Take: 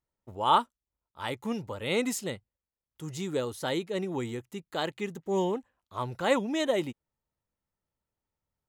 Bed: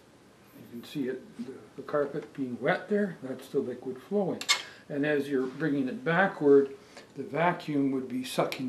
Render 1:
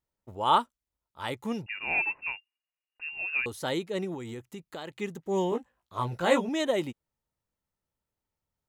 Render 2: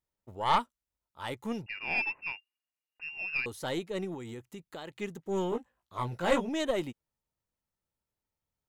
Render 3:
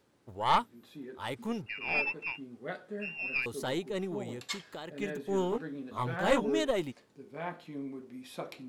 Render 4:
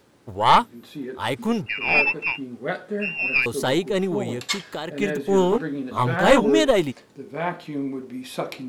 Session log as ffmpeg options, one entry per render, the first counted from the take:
-filter_complex "[0:a]asettb=1/sr,asplit=3[a][b][c];[a]atrim=end=1.664[d];[b]atrim=start=1.66:end=3.46,asetpts=PTS-STARTPTS,afade=t=in:d=0.004:c=qsin,afade=t=out:st=1.796:d=0.004:c=qsin,lowpass=f=2.5k:t=q:w=0.5098,lowpass=f=2.5k:t=q:w=0.6013,lowpass=f=2.5k:t=q:w=0.9,lowpass=f=2.5k:t=q:w=2.563,afreqshift=-2900[e];[c]atrim=start=3.456[f];[d][e]acrossfade=d=0.004:c1=hsin:c2=qsin[g];[g][f]acrossfade=d=0.004:c1=qsin:c2=hsin,asettb=1/sr,asplit=3[h][i][j];[h]atrim=end=4.144[k];[i]atrim=start=4.14:end=4.98,asetpts=PTS-STARTPTS,afade=t=in:d=0.004:c=qsin,afade=t=out:st=0.836:d=0.004:c=qsin,acompressor=threshold=-35dB:ratio=6:attack=3.2:release=140:knee=1:detection=peak[l];[j]atrim=start=4.976[m];[k][l]acrossfade=d=0.004:c1=hsin:c2=qsin[n];[n][m]acrossfade=d=0.004:c1=qsin:c2=hsin,asettb=1/sr,asplit=3[o][p][q];[o]atrim=end=5.504[r];[p]atrim=start=5.5:end=6.49,asetpts=PTS-STARTPTS,afade=t=in:d=0.004:c=qsin,afade=t=out:st=0.986:d=0.004:c=qsin,asplit=2[s][t];[t]adelay=17,volume=-3dB[u];[s][u]amix=inputs=2:normalize=0,atrim=end_sample=43659[v];[q]atrim=start=6.486[w];[r][v]acrossfade=d=0.004:c1=hsin:c2=qsin[x];[x][w]acrossfade=d=0.004:c1=qsin:c2=hsin"
-af "aeval=exprs='(tanh(5.01*val(0)+0.6)-tanh(0.6))/5.01':c=same"
-filter_complex "[1:a]volume=-12.5dB[a];[0:a][a]amix=inputs=2:normalize=0"
-af "volume=12dB,alimiter=limit=-2dB:level=0:latency=1"

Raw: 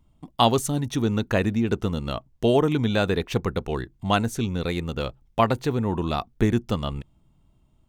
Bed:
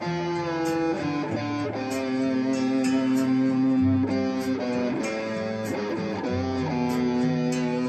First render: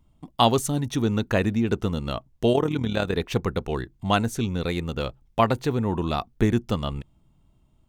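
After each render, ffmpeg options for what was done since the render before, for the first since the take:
-filter_complex "[0:a]asplit=3[a][b][c];[a]afade=t=out:st=2.52:d=0.02[d];[b]tremolo=f=38:d=0.667,afade=t=in:st=2.52:d=0.02,afade=t=out:st=3.15:d=0.02[e];[c]afade=t=in:st=3.15:d=0.02[f];[d][e][f]amix=inputs=3:normalize=0"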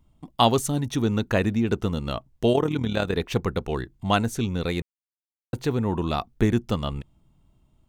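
-filter_complex "[0:a]asplit=3[a][b][c];[a]atrim=end=4.82,asetpts=PTS-STARTPTS,afade=t=out:st=4.816:d=0.004:c=hsin[d];[b]atrim=start=4.82:end=5.53,asetpts=PTS-STARTPTS,volume=0[e];[c]atrim=start=5.53,asetpts=PTS-STARTPTS,afade=t=in:d=0.004:c=hsin[f];[d][e][f]concat=n=3:v=0:a=1"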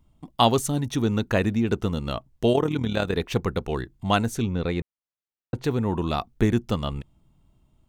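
-filter_complex "[0:a]asettb=1/sr,asplit=3[a][b][c];[a]atrim=end=4.424[d];[b]atrim=start=4.42:end=5.64,asetpts=PTS-STARTPTS,afade=t=in:d=0.004:c=qsin,afade=t=out:st=1.216:d=0.004:c=qsin,aemphasis=mode=reproduction:type=75fm[e];[c]atrim=start=5.636[f];[d][e]acrossfade=d=0.004:c1=hsin:c2=qsin[g];[g][f]acrossfade=d=0.004:c1=qsin:c2=hsin"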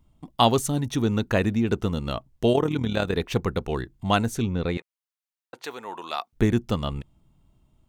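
-filter_complex "[0:a]asettb=1/sr,asplit=3[a][b][c];[a]atrim=end=4.774[d];[b]atrim=start=4.77:end=6.33,asetpts=PTS-STARTPTS,afade=t=in:d=0.004:c=qsin,afade=t=out:st=1.556:d=0.004:c=qsin,highpass=770[e];[c]atrim=start=6.326[f];[d][e]acrossfade=d=0.004:c1=hsin:c2=qsin[g];[g][f]acrossfade=d=0.004:c1=qsin:c2=hsin"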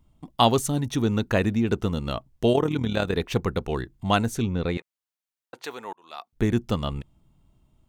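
-filter_complex "[0:a]asplit=2[a][b];[a]atrim=end=5.93,asetpts=PTS-STARTPTS,afade=t=out:st=5.926:d=0.004:c=hsin[c];[b]atrim=start=5.93,asetpts=PTS-STARTPTS,afade=t=in:d=0.67[d];[c][d]concat=n=2:v=0:a=1"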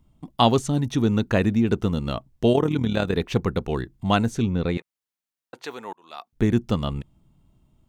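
-filter_complex "[0:a]acrossover=split=7900[a][b];[b]acompressor=threshold=-53dB:ratio=4:attack=1:release=60[c];[a][c]amix=inputs=2:normalize=0,equalizer=f=190:t=o:w=1.9:g=3.5"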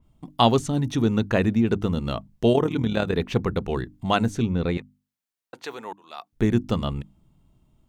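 -af "bandreject=f=50:t=h:w=6,bandreject=f=100:t=h:w=6,bandreject=f=150:t=h:w=6,bandreject=f=200:t=h:w=6,bandreject=f=250:t=h:w=6,bandreject=f=300:t=h:w=6,adynamicequalizer=threshold=0.00891:dfrequency=3900:dqfactor=0.7:tfrequency=3900:tqfactor=0.7:attack=5:release=100:ratio=0.375:range=2:mode=cutabove:tftype=highshelf"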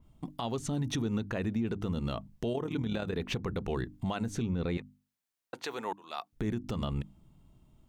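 -af "acompressor=threshold=-23dB:ratio=6,alimiter=limit=-23.5dB:level=0:latency=1:release=104"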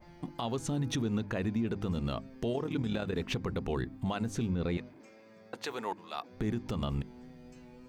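-filter_complex "[1:a]volume=-27.5dB[a];[0:a][a]amix=inputs=2:normalize=0"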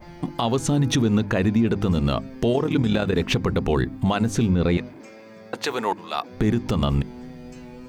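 -af "volume=12dB"

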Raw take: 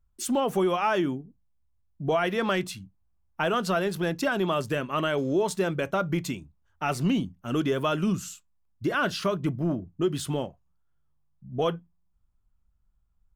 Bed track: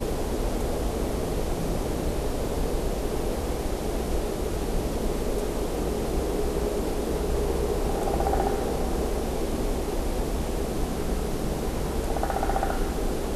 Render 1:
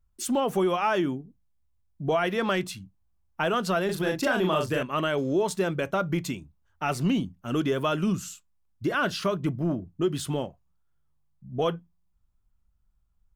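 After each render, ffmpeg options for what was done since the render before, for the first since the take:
-filter_complex "[0:a]asettb=1/sr,asplit=3[a][b][c];[a]atrim=end=3.854[d];[b]atrim=start=3.85:end=4.83,asetpts=PTS-STARTPTS,afade=t=in:d=0.004:c=qsin,afade=t=out:st=0.976:d=0.004:c=qsin,asplit=2[e][f];[f]adelay=38,volume=-3dB[g];[e][g]amix=inputs=2:normalize=0,atrim=end_sample=43218[h];[c]atrim=start=4.826[i];[d][h]acrossfade=d=0.004:c1=hsin:c2=qsin[j];[j][i]acrossfade=d=0.004:c1=qsin:c2=hsin"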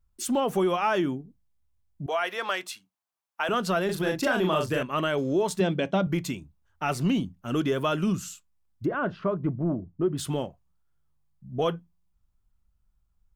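-filter_complex "[0:a]asettb=1/sr,asplit=3[a][b][c];[a]atrim=end=2.064[d];[b]atrim=start=2.06:end=3.49,asetpts=PTS-STARTPTS,afade=t=in:d=0.004:c=qsin,afade=t=out:st=1.426:d=0.004:c=qsin,highpass=670[e];[c]atrim=start=3.486[f];[d][e]acrossfade=d=0.004:c1=hsin:c2=qsin[g];[g][f]acrossfade=d=0.004:c1=qsin:c2=hsin,asettb=1/sr,asplit=3[h][i][j];[h]atrim=end=5.604[k];[i]atrim=start=5.6:end=6.07,asetpts=PTS-STARTPTS,afade=t=in:d=0.004:c=qsin,afade=t=out:st=0.466:d=0.004:c=qsin,highpass=120,equalizer=f=190:t=q:w=4:g=9,equalizer=f=280:t=q:w=4:g=4,equalizer=f=710:t=q:w=4:g=4,equalizer=f=1.3k:t=q:w=4:g=-8,equalizer=f=3.3k:t=q:w=4:g=7,equalizer=f=6.7k:t=q:w=4:g=-6,lowpass=f=7.3k:w=0.5412,lowpass=f=7.3k:w=1.3066[l];[j]atrim=start=6.066[m];[k][l]acrossfade=d=0.004:c1=hsin:c2=qsin[n];[n][m]acrossfade=d=0.004:c1=qsin:c2=hsin,asplit=3[o][p][q];[o]afade=t=out:st=8.84:d=0.02[r];[p]lowpass=1.2k,afade=t=in:st=8.84:d=0.02,afade=t=out:st=10.17:d=0.02[s];[q]afade=t=in:st=10.17:d=0.02[t];[r][s][t]amix=inputs=3:normalize=0"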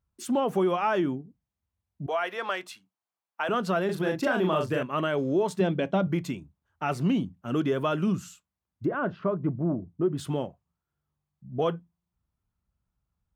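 -af "highpass=82,highshelf=f=3.1k:g=-9"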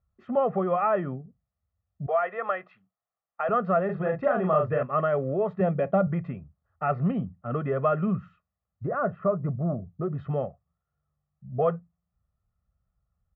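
-af "lowpass=f=1.8k:w=0.5412,lowpass=f=1.8k:w=1.3066,aecho=1:1:1.6:0.79"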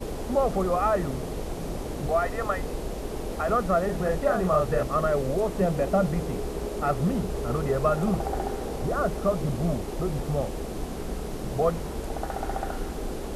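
-filter_complex "[1:a]volume=-5dB[a];[0:a][a]amix=inputs=2:normalize=0"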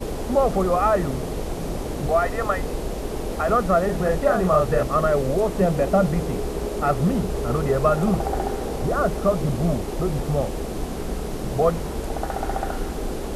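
-af "volume=4.5dB"

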